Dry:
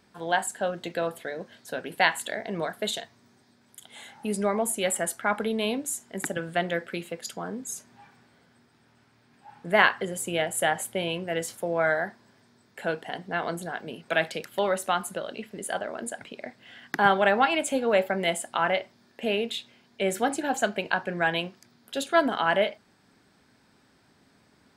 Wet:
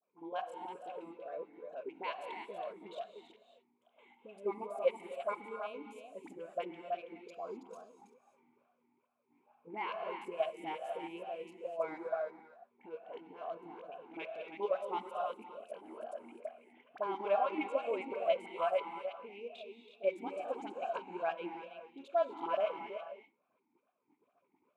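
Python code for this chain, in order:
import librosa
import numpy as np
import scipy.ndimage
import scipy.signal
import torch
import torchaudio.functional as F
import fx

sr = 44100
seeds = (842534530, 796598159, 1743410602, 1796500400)

p1 = fx.wiener(x, sr, points=9)
p2 = fx.low_shelf(p1, sr, hz=380.0, db=-4.5)
p3 = fx.level_steps(p2, sr, step_db=13)
p4 = fx.dispersion(p3, sr, late='highs', ms=42.0, hz=1000.0)
p5 = p4 + fx.echo_single(p4, sr, ms=325, db=-7.5, dry=0)
p6 = fx.rev_gated(p5, sr, seeds[0], gate_ms=280, shape='rising', drr_db=7.0)
p7 = fx.vowel_sweep(p6, sr, vowels='a-u', hz=2.3)
y = F.gain(torch.from_numpy(p7), 3.5).numpy()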